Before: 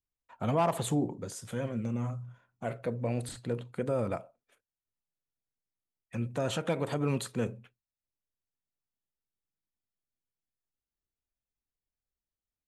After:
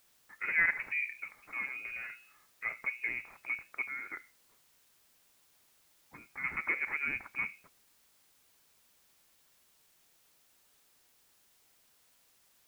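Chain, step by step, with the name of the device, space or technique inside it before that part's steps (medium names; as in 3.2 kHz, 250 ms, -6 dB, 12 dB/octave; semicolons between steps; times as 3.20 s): 3.87–6.44 s: high-pass 1.5 kHz 6 dB/octave; scrambled radio voice (band-pass 380–2800 Hz; frequency inversion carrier 2.7 kHz; white noise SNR 27 dB)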